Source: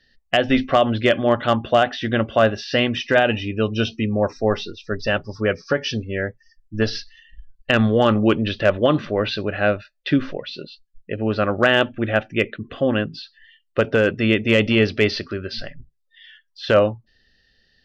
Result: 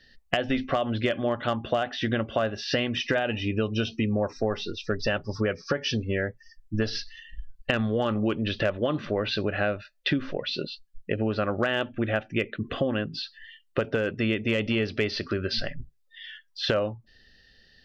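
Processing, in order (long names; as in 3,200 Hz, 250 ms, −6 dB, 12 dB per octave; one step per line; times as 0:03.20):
downward compressor 6 to 1, threshold −27 dBFS, peak gain reduction 15 dB
level +3.5 dB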